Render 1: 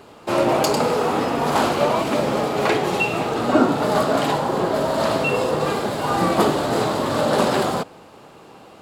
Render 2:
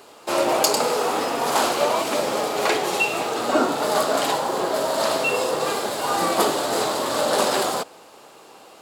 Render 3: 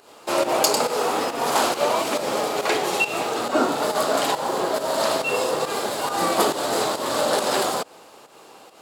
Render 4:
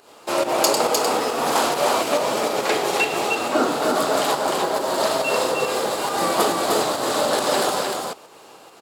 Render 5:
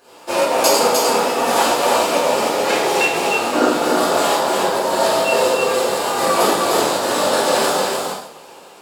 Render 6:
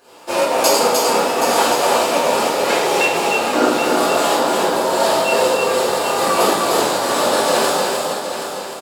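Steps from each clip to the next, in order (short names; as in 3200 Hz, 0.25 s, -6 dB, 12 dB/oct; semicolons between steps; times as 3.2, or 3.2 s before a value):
tone controls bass -14 dB, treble +8 dB; gain -1 dB
pump 138 bpm, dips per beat 1, -10 dB, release 0.156 s
echo 0.304 s -3.5 dB
two-slope reverb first 0.57 s, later 1.6 s, DRR -9 dB; gain -5 dB
echo 0.775 s -8.5 dB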